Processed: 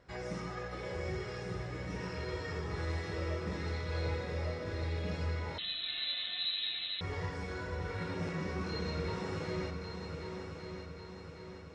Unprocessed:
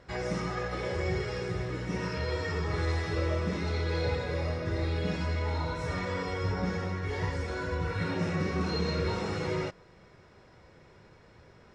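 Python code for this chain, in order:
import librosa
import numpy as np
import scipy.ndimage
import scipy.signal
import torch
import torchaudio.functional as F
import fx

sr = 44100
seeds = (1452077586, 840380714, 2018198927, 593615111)

p1 = x + fx.echo_heads(x, sr, ms=383, heads='second and third', feedback_pct=57, wet_db=-8.5, dry=0)
p2 = fx.freq_invert(p1, sr, carrier_hz=4000, at=(5.58, 7.01))
y = F.gain(torch.from_numpy(p2), -7.5).numpy()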